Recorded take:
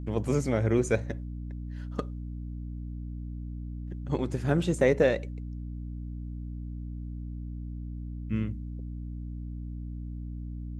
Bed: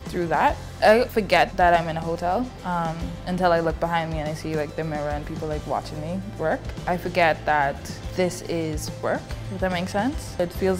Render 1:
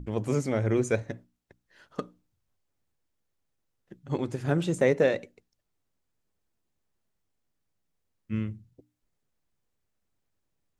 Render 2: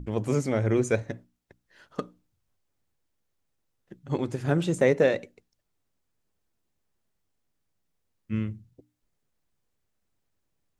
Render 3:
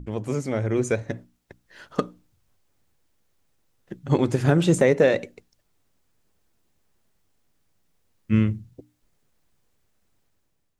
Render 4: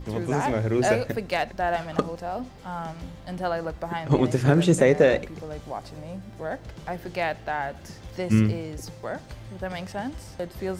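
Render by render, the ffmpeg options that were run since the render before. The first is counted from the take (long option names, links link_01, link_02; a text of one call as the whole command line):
ffmpeg -i in.wav -af "bandreject=frequency=60:width_type=h:width=6,bandreject=frequency=120:width_type=h:width=6,bandreject=frequency=180:width_type=h:width=6,bandreject=frequency=240:width_type=h:width=6,bandreject=frequency=300:width_type=h:width=6" out.wav
ffmpeg -i in.wav -af "volume=1.5dB" out.wav
ffmpeg -i in.wav -af "alimiter=limit=-16.5dB:level=0:latency=1:release=270,dynaudnorm=framelen=680:gausssize=3:maxgain=9.5dB" out.wav
ffmpeg -i in.wav -i bed.wav -filter_complex "[1:a]volume=-8dB[link_01];[0:a][link_01]amix=inputs=2:normalize=0" out.wav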